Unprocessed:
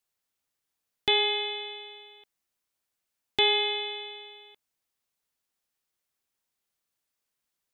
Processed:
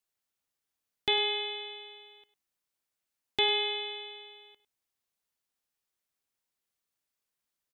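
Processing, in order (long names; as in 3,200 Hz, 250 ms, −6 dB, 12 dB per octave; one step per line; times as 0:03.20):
multi-tap delay 52/102 ms −17.5/−16 dB
level −3.5 dB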